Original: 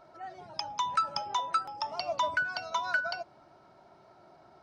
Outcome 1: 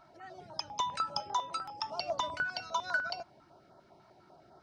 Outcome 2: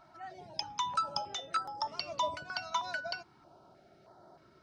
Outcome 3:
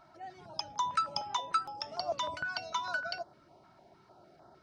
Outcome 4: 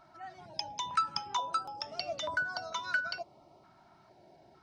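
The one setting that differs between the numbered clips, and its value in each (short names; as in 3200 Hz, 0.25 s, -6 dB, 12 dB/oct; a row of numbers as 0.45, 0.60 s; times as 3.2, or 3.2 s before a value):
stepped notch, rate: 10, 3.2, 6.6, 2.2 Hz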